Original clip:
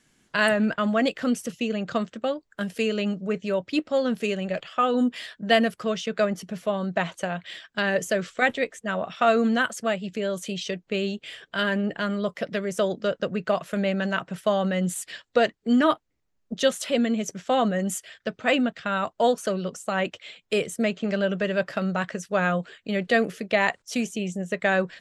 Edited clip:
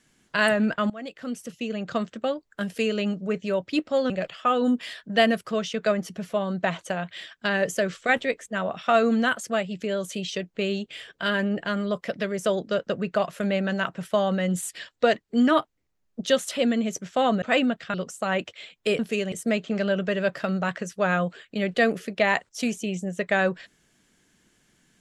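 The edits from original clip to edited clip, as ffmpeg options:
-filter_complex "[0:a]asplit=7[a][b][c][d][e][f][g];[a]atrim=end=0.9,asetpts=PTS-STARTPTS,afade=t=out:st=0.896:d=0.004:c=hsin:silence=0.1[h];[b]atrim=start=0.9:end=4.102,asetpts=PTS-STARTPTS,afade=t=in:d=1.2:silence=0.1[i];[c]atrim=start=4.428:end=17.752[j];[d]atrim=start=18.378:end=18.902[k];[e]atrim=start=19.598:end=20.652[l];[f]atrim=start=4.098:end=4.432[m];[g]atrim=start=20.648[n];[h][i]concat=n=2:v=0:a=1[o];[o][j]acrossfade=d=0.004:c1=hsin:c2=hsin[p];[p][k]acrossfade=d=0.004:c1=hsin:c2=hsin[q];[q][l]acrossfade=d=0.004:c1=hsin:c2=hsin[r];[r][m]acrossfade=d=0.004:c1=hsin:c2=hsin[s];[s][n]acrossfade=d=0.004:c1=hsin:c2=hsin"

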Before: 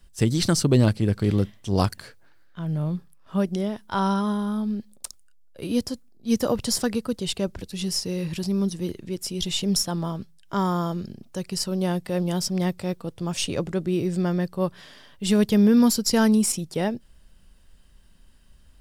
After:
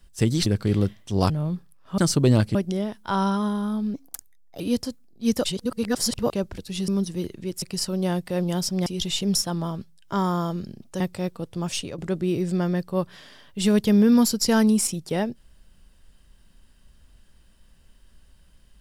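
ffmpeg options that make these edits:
-filter_complex "[0:a]asplit=14[a][b][c][d][e][f][g][h][i][j][k][l][m][n];[a]atrim=end=0.462[o];[b]atrim=start=1.028:end=1.872[p];[c]atrim=start=2.708:end=3.392[q];[d]atrim=start=0.458:end=1.032[r];[e]atrim=start=3.388:end=4.784[s];[f]atrim=start=4.78:end=5.64,asetpts=PTS-STARTPTS,asetrate=57330,aresample=44100[t];[g]atrim=start=5.636:end=6.482[u];[h]atrim=start=6.478:end=7.342,asetpts=PTS-STARTPTS,areverse[v];[i]atrim=start=7.338:end=7.922[w];[j]atrim=start=8.528:end=9.272[x];[k]atrim=start=11.408:end=12.652[y];[l]atrim=start=9.268:end=11.412[z];[m]atrim=start=12.648:end=13.63,asetpts=PTS-STARTPTS,afade=t=out:st=0.682:d=0.3:silence=0.251189[aa];[n]atrim=start=13.63,asetpts=PTS-STARTPTS,afade=t=in:d=0.004:c=hsin:silence=0.251189[ab];[o][p]acrossfade=d=0.004:c1=hsin:c2=hsin[ac];[ac][q]acrossfade=d=0.004:c1=hsin:c2=hsin[ad];[ad][r]acrossfade=d=0.004:c1=hsin:c2=hsin[ae];[ae][s]acrossfade=d=0.004:c1=hsin:c2=hsin[af];[af][t]acrossfade=d=0.004:c1=hsin:c2=hsin[ag];[ag][u]acrossfade=d=0.004:c1=hsin:c2=hsin[ah];[ah][v]acrossfade=d=0.004:c1=hsin:c2=hsin[ai];[ai][w]acrossfade=d=0.004:c1=hsin:c2=hsin[aj];[aj][x]acrossfade=d=0.004:c1=hsin:c2=hsin[ak];[ak][y]acrossfade=d=0.004:c1=hsin:c2=hsin[al];[al][z]acrossfade=d=0.004:c1=hsin:c2=hsin[am];[aa][ab]concat=n=2:v=0:a=1[an];[am][an]acrossfade=d=0.004:c1=hsin:c2=hsin"

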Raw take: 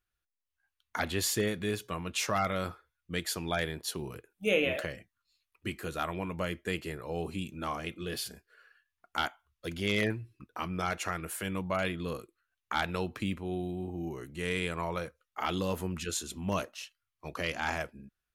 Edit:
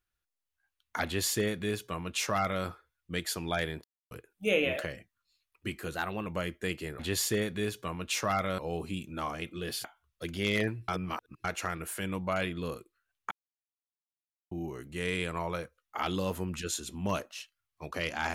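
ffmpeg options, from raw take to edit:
-filter_complex "[0:a]asplit=12[a][b][c][d][e][f][g][h][i][j][k][l];[a]atrim=end=3.84,asetpts=PTS-STARTPTS,afade=t=out:st=3.836:d=0.004:c=hsin[m];[b]atrim=start=3.84:end=4.11,asetpts=PTS-STARTPTS,volume=0[n];[c]atrim=start=4.11:end=5.954,asetpts=PTS-STARTPTS,afade=t=in:d=0.004:c=hsin[o];[d]atrim=start=5.95:end=6.3,asetpts=PTS-STARTPTS,asetrate=49392,aresample=44100,atrim=end_sample=13781,asetpts=PTS-STARTPTS[p];[e]atrim=start=6.296:end=7.032[q];[f]atrim=start=1.048:end=2.642[r];[g]atrim=start=7.028:end=8.292[s];[h]atrim=start=9.268:end=10.312[t];[i]atrim=start=10.308:end=10.872,asetpts=PTS-STARTPTS,areverse[u];[j]atrim=start=10.868:end=12.74,asetpts=PTS-STARTPTS,afade=t=out:st=1.868:d=0.004:c=hsin[v];[k]atrim=start=12.74:end=13.94,asetpts=PTS-STARTPTS,volume=0[w];[l]atrim=start=13.94,asetpts=PTS-STARTPTS,afade=t=in:d=0.004:c=hsin[x];[m][n][o]concat=n=3:v=0:a=1[y];[y][p]acrossfade=d=0.004:c1=hsin:c2=hsin[z];[z][q]acrossfade=d=0.004:c1=hsin:c2=hsin[aa];[aa][r]acrossfade=d=0.004:c1=hsin:c2=hsin[ab];[ab][s]acrossfade=d=0.004:c1=hsin:c2=hsin[ac];[ac][t]acrossfade=d=0.004:c1=hsin:c2=hsin[ad];[ad][u]acrossfade=d=0.004:c1=hsin:c2=hsin[ae];[v][w][x]concat=n=3:v=0:a=1[af];[ae][af]acrossfade=d=0.004:c1=hsin:c2=hsin"

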